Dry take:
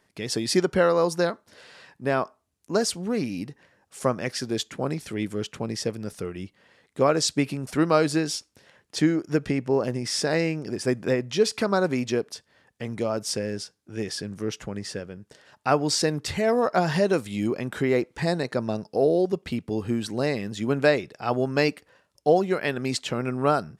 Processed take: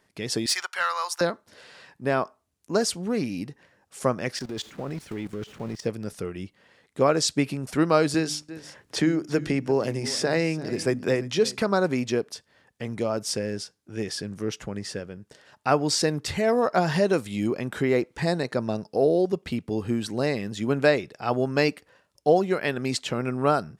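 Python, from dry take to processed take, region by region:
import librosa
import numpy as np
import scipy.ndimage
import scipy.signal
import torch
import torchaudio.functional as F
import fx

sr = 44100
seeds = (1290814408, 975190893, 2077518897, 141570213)

y = fx.chain(x, sr, fx.highpass(hz=1000.0, slope=24),
    fx.leveller(passes=1), at=(0.46, 1.21))
y = fx.chain(y, sr, fx.zero_step(step_db=-34.5),
    fx.high_shelf(hz=6700.0, db=-9.0),
    fx.level_steps(step_db=16), at=(4.36, 5.85))
y = fx.chain(y, sr, fx.hum_notches(base_hz=50, count=6),
    fx.echo_single(ms=342, db=-19.0),
    fx.band_squash(depth_pct=40), at=(8.14, 11.62))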